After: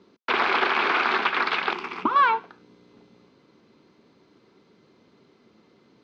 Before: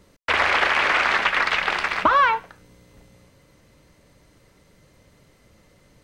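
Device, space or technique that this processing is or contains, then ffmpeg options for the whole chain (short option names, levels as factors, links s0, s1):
kitchen radio: -filter_complex "[0:a]highpass=220,equalizer=f=230:t=q:w=4:g=7,equalizer=f=380:t=q:w=4:g=8,equalizer=f=570:t=q:w=4:g=-9,equalizer=f=1900:t=q:w=4:g=-9,equalizer=f=2900:t=q:w=4:g=-4,lowpass=f=4500:w=0.5412,lowpass=f=4500:w=1.3066,asettb=1/sr,asplit=3[s0][s1][s2];[s0]atrim=end=1.734[s3];[s1]atrim=start=1.73:end=2.16,asetpts=PTS-STARTPTS,afade=t=in:d=0.004:c=qsin,afade=t=out:st=0.426:d=0.004:c=qsin,equalizer=f=630:t=o:w=0.67:g=-12,equalizer=f=1600:t=o:w=0.67:g=-11,equalizer=f=4000:t=o:w=0.67:g=-11[s4];[s2]atrim=start=2.156[s5];[s3][s4]acrossfade=d=0.004:c1=hsin:c2=qsin[s6];[s6][s5]acrossfade=d=0.004:c1=qsin:c2=hsin"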